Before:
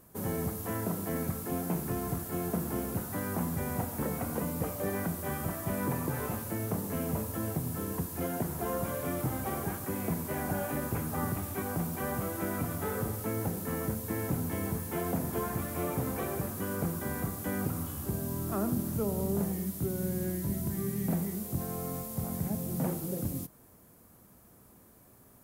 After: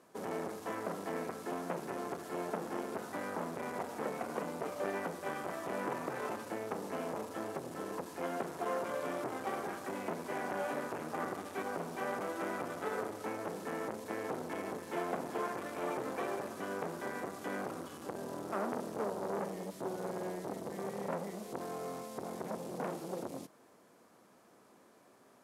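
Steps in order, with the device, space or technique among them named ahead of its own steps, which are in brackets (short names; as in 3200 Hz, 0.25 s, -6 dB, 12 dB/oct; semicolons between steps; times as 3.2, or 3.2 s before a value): public-address speaker with an overloaded transformer (core saturation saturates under 890 Hz; BPF 330–5500 Hz); gain +1.5 dB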